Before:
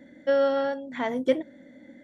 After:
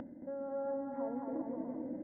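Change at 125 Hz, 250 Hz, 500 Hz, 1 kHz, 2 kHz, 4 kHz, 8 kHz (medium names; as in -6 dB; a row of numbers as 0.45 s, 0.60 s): -3.5 dB, -7.5 dB, -14.5 dB, -12.0 dB, -27.5 dB, under -40 dB, no reading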